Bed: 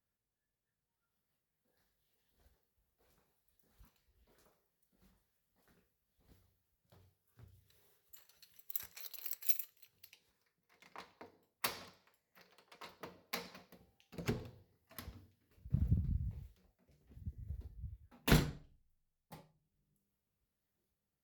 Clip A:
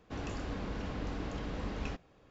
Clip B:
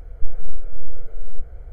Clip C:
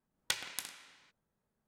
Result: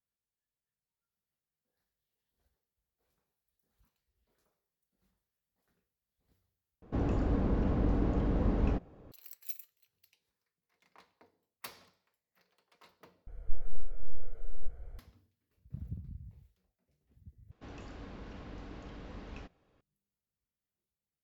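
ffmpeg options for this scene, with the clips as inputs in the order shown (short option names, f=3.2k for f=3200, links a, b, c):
-filter_complex "[1:a]asplit=2[a][b];[0:a]volume=-8dB[c];[a]tiltshelf=f=1.4k:g=10[d];[b]lowpass=6.7k[e];[c]asplit=4[f][g][h][i];[f]atrim=end=6.824[j];[d]atrim=end=2.3,asetpts=PTS-STARTPTS,volume=-0.5dB[k];[g]atrim=start=9.116:end=13.274[l];[2:a]atrim=end=1.72,asetpts=PTS-STARTPTS,volume=-9.5dB[m];[h]atrim=start=14.986:end=17.514[n];[e]atrim=end=2.3,asetpts=PTS-STARTPTS,volume=-8.5dB[o];[i]atrim=start=19.806[p];[j][k]acrossfade=d=0.004:c1=hsin:c2=hsin[q];[q][l]acrossfade=d=0.004:c1=hsin:c2=hsin[r];[r][m]acrossfade=d=0.004:c1=hsin:c2=hsin[s];[s][n]acrossfade=d=0.004:c1=hsin:c2=hsin[t];[t][o]acrossfade=d=0.004:c1=hsin:c2=hsin[u];[u][p]acrossfade=d=0.004:c1=hsin:c2=hsin"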